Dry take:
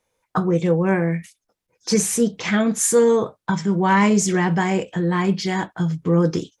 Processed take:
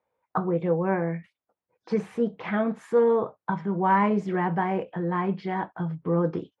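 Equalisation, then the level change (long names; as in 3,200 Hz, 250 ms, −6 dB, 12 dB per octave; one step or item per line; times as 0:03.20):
high-pass filter 80 Hz
high-frequency loss of the air 430 metres
parametric band 840 Hz +8.5 dB 1.9 octaves
−8.5 dB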